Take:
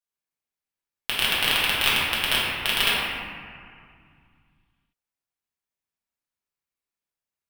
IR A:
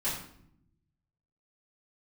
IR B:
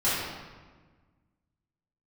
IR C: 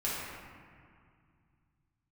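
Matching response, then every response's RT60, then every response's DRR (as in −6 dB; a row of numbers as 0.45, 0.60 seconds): C; 0.70, 1.4, 2.2 seconds; −12.0, −12.5, −8.5 decibels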